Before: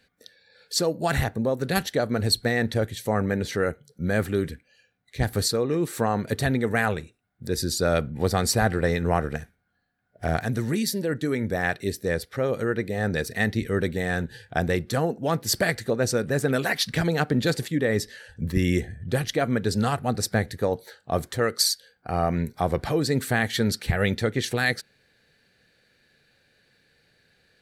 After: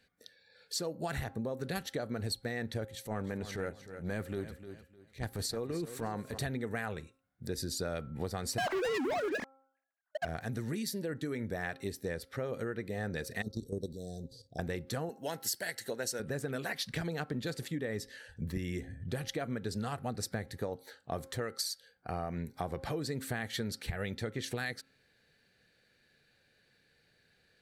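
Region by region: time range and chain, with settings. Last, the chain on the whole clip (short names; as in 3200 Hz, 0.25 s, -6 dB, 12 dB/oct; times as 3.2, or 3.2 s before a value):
2.85–6.38 transient shaper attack -11 dB, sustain -5 dB + feedback echo 0.304 s, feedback 25%, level -14 dB
8.58–10.25 sine-wave speech + sample leveller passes 5
13.42–14.59 inverse Chebyshev band-stop 1000–2800 Hz + bell 4900 Hz +8.5 dB 1 oct + level quantiser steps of 12 dB
15.09–16.2 tilt +3 dB/oct + notch comb 1200 Hz
whole clip: de-hum 267.5 Hz, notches 5; compressor, threshold -27 dBFS; gain -6 dB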